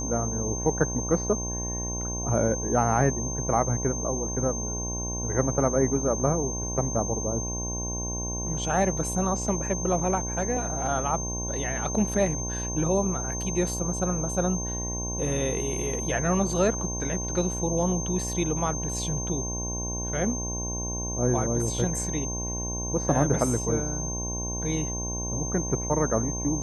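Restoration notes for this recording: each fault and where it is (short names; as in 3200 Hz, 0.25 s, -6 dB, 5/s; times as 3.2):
buzz 60 Hz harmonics 18 -33 dBFS
tone 6300 Hz -32 dBFS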